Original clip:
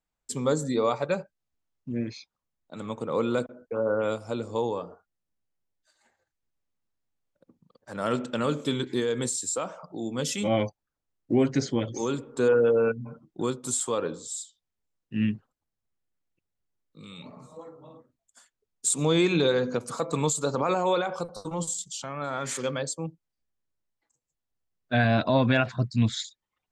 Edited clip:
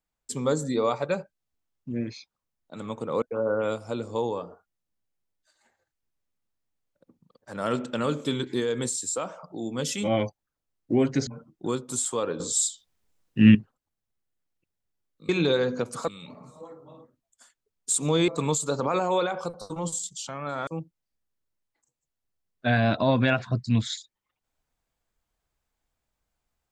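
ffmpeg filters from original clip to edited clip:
-filter_complex "[0:a]asplit=9[s0][s1][s2][s3][s4][s5][s6][s7][s8];[s0]atrim=end=3.222[s9];[s1]atrim=start=3.618:end=11.672[s10];[s2]atrim=start=13.018:end=14.152[s11];[s3]atrim=start=14.148:end=15.302,asetpts=PTS-STARTPTS,volume=3.55[s12];[s4]atrim=start=15.298:end=17.042[s13];[s5]atrim=start=19.238:end=20.032[s14];[s6]atrim=start=17.038:end=19.242[s15];[s7]atrim=start=20.028:end=22.422[s16];[s8]atrim=start=22.938[s17];[s9][s10]acrossfade=d=0.004:c1=hsin:c2=hsin[s18];[s18][s11]acrossfade=d=0.004:c1=hsin:c2=hsin[s19];[s19][s12]acrossfade=d=0.004:c1=hsin:c2=hsin[s20];[s20][s13]acrossfade=d=0.004:c1=hsin:c2=hsin[s21];[s21][s14]acrossfade=d=0.004:c1=hsin:c2=hsin[s22];[s22][s15]acrossfade=d=0.004:c1=hsin:c2=hsin[s23];[s23][s16]acrossfade=d=0.004:c1=hsin:c2=hsin[s24];[s24][s17]acrossfade=d=0.004:c1=hsin:c2=hsin"

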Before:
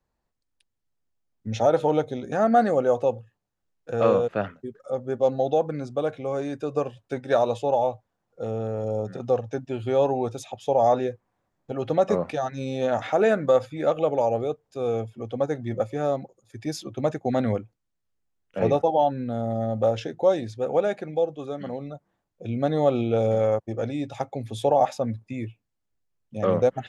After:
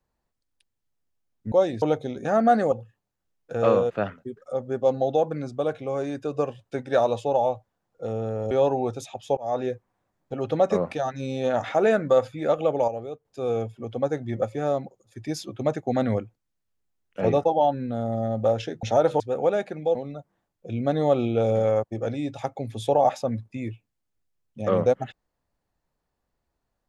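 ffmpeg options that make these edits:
-filter_complex "[0:a]asplit=11[s0][s1][s2][s3][s4][s5][s6][s7][s8][s9][s10];[s0]atrim=end=1.522[s11];[s1]atrim=start=20.208:end=20.512[s12];[s2]atrim=start=1.888:end=2.792[s13];[s3]atrim=start=3.098:end=8.892[s14];[s4]atrim=start=9.888:end=10.75,asetpts=PTS-STARTPTS,afade=t=out:st=0.858:d=0.004:c=hsin[s15];[s5]atrim=start=10.75:end=14.262,asetpts=PTS-STARTPTS,afade=t=in:d=0.33[s16];[s6]atrim=start=14.258:end=14.632,asetpts=PTS-STARTPTS,volume=0.398[s17];[s7]atrim=start=14.628:end=20.212[s18];[s8]atrim=start=1.518:end=1.892[s19];[s9]atrim=start=20.508:end=21.262[s20];[s10]atrim=start=21.708[s21];[s11][s12]acrossfade=d=0.004:c1=hsin:c2=hsin[s22];[s22][s13]acrossfade=d=0.004:c1=hsin:c2=hsin[s23];[s23][s14]acrossfade=d=0.004:c1=hsin:c2=hsin[s24];[s15][s16]concat=n=2:v=0:a=1[s25];[s24][s25]acrossfade=d=0.004:c1=hsin:c2=hsin[s26];[s26][s17]acrossfade=d=0.004:c1=hsin:c2=hsin[s27];[s27][s18]acrossfade=d=0.004:c1=hsin:c2=hsin[s28];[s28][s19]acrossfade=d=0.004:c1=hsin:c2=hsin[s29];[s29][s20]acrossfade=d=0.004:c1=hsin:c2=hsin[s30];[s30][s21]acrossfade=d=0.004:c1=hsin:c2=hsin"

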